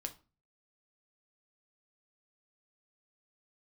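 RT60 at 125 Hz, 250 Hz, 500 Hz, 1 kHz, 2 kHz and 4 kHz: 0.55 s, 0.45 s, 0.35 s, 0.35 s, 0.30 s, 0.25 s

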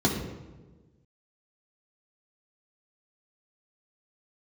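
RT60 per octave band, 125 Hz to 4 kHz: 1.7 s, 1.6 s, 1.5 s, 1.1 s, 0.90 s, 0.75 s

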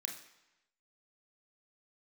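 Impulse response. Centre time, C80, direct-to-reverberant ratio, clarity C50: 26 ms, 10.5 dB, 1.5 dB, 7.5 dB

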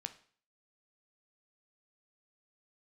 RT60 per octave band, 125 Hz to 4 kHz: 0.50 s, 0.50 s, 0.45 s, 0.50 s, 0.50 s, 0.45 s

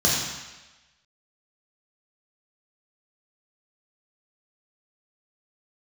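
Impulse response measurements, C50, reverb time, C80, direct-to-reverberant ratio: 0.0 dB, 1.1 s, 2.5 dB, -4.5 dB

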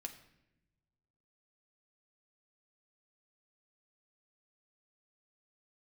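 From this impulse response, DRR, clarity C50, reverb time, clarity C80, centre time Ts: 3.5 dB, 11.0 dB, 0.90 s, 13.5 dB, 12 ms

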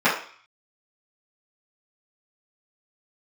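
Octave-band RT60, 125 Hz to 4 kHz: 0.35 s, 0.40 s, 0.40 s, 0.55 s, 0.60 s, 0.55 s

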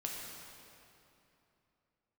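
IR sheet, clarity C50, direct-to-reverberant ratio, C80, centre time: 0.0 dB, -2.0 dB, 1.0 dB, 128 ms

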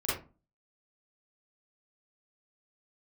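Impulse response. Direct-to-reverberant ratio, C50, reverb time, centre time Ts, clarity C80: -10.0 dB, 1.0 dB, 0.35 s, 52 ms, 9.0 dB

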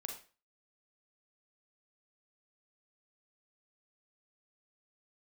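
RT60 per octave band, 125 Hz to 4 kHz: 0.35 s, 0.35 s, 0.35 s, 0.35 s, 0.35 s, 0.35 s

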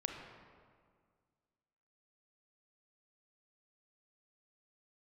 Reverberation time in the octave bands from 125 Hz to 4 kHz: 2.2 s, 2.1 s, 1.9 s, 1.9 s, 1.5 s, 1.2 s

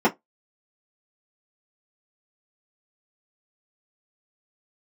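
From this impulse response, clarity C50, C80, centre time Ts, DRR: 23.5 dB, 35.0 dB, 11 ms, -6.0 dB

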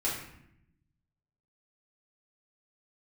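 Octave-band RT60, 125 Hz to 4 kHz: 1.5 s, 1.2 s, 0.80 s, 0.70 s, 0.75 s, 0.55 s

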